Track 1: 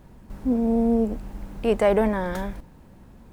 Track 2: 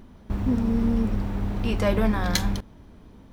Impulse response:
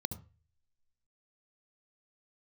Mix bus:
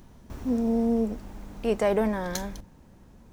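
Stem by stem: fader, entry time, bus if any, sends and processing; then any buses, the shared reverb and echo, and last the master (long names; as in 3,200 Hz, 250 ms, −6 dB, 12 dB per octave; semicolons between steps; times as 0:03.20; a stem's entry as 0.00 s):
−4.5 dB, 0.00 s, no send, no processing
−6.5 dB, 0.00 s, polarity flipped, no send, high-shelf EQ 6,200 Hz +12 dB; mains-hum notches 50/100/150/200 Hz; automatic ducking −10 dB, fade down 1.40 s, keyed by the first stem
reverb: not used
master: parametric band 6,200 Hz +5.5 dB 0.64 octaves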